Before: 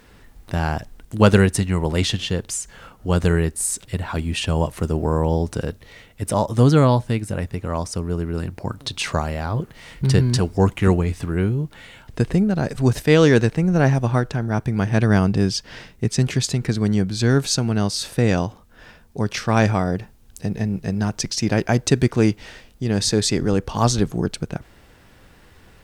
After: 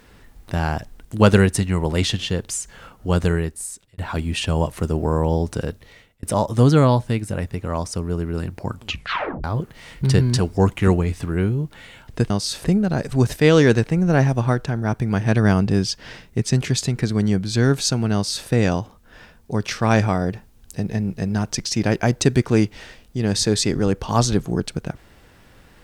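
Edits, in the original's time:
3.16–3.98 s: fade out
5.61–6.23 s: fade out equal-power
8.71 s: tape stop 0.73 s
17.80–18.14 s: copy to 12.30 s

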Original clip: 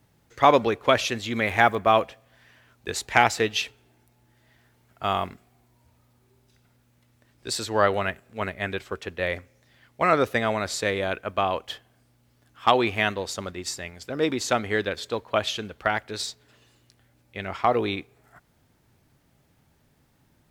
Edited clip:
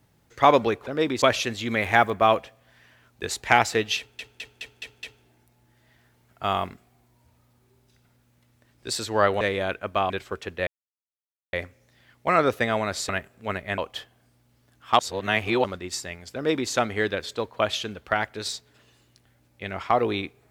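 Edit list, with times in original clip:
3.63 s: stutter 0.21 s, 6 plays
8.01–8.70 s: swap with 10.83–11.52 s
9.27 s: insert silence 0.86 s
12.73–13.38 s: reverse
14.09–14.44 s: copy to 0.87 s

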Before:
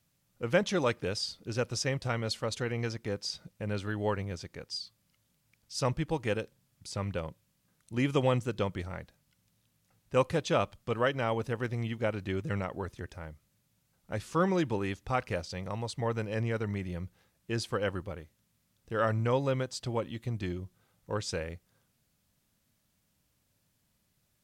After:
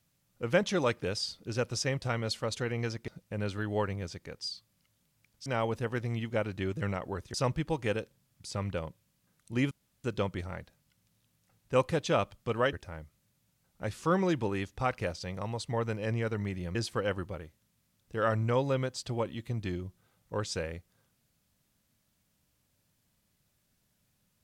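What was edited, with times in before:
3.08–3.37 s: delete
8.12–8.45 s: room tone
11.14–13.02 s: move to 5.75 s
17.04–17.52 s: delete

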